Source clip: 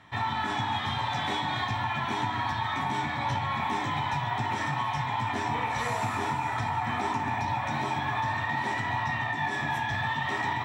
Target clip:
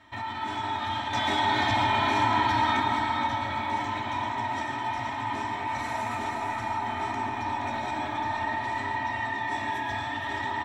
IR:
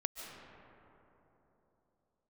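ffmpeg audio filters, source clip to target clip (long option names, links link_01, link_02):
-filter_complex "[0:a]aecho=1:1:3.2:0.95,alimiter=limit=-22dB:level=0:latency=1,asettb=1/sr,asplit=3[link_01][link_02][link_03];[link_01]atrim=end=1.134[link_04];[link_02]atrim=start=1.13:end=2.8,asetpts=PTS-STARTPTS,afade=type=in:duration=0.004:curve=qsin,afade=type=out:start_time=1.666:duration=0.004:curve=qsin,acontrast=86[link_05];[link_03]atrim=start=2.796[link_06];[link_04][link_05]acrossfade=duration=0.004:curve1=hsin:curve2=qsin[link_07];[link_07][link_06]acrossfade=duration=0.004:curve1=qsin:curve2=hsin,aecho=1:1:472:0.447[link_08];[1:a]atrim=start_sample=2205,asetrate=57330,aresample=44100[link_09];[link_08][link_09]afir=irnorm=-1:irlink=0"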